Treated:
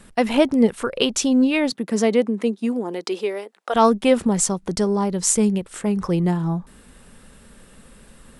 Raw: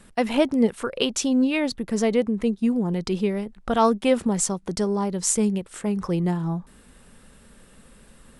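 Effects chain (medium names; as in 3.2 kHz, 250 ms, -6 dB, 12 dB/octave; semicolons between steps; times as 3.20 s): 1.70–3.74 s: high-pass 150 Hz -> 470 Hz 24 dB/octave; trim +3.5 dB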